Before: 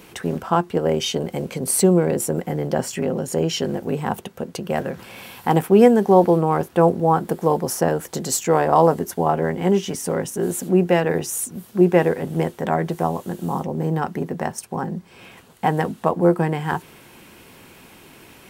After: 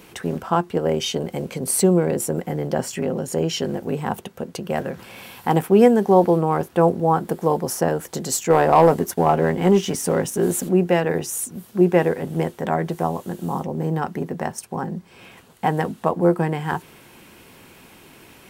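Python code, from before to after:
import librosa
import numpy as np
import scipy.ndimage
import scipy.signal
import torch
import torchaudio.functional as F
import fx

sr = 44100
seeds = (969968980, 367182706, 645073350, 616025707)

y = fx.leveller(x, sr, passes=1, at=(8.5, 10.69))
y = y * 10.0 ** (-1.0 / 20.0)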